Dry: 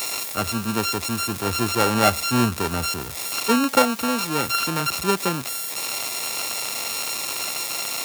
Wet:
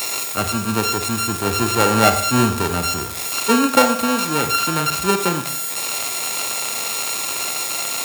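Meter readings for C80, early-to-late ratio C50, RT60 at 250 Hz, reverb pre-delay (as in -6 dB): 12.0 dB, 9.0 dB, 0.55 s, 40 ms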